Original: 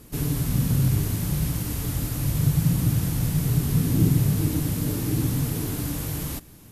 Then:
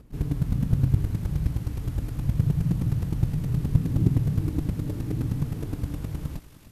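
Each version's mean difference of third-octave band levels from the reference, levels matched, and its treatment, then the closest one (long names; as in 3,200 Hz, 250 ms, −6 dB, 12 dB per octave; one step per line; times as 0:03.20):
7.5 dB: low-pass filter 1,800 Hz 6 dB per octave
low-shelf EQ 120 Hz +10 dB
square-wave tremolo 9.6 Hz, depth 65%, duty 10%
feedback echo with a high-pass in the loop 292 ms, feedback 83%, high-pass 1,100 Hz, level −10 dB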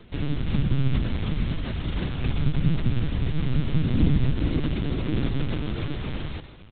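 10.5 dB: high-shelf EQ 2,000 Hz +6.5 dB
single-tap delay 110 ms −14 dB
four-comb reverb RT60 3.3 s, DRR 17 dB
linear-prediction vocoder at 8 kHz pitch kept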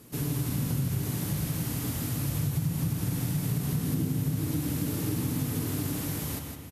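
3.0 dB: high-pass filter 97 Hz 12 dB per octave
on a send: repeating echo 161 ms, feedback 35%, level −6.5 dB
on the sum: spring reverb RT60 2 s, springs 50/58 ms, chirp 80 ms, DRR 7 dB
downward compressor, threshold −22 dBFS, peak gain reduction 8 dB
level −3 dB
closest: third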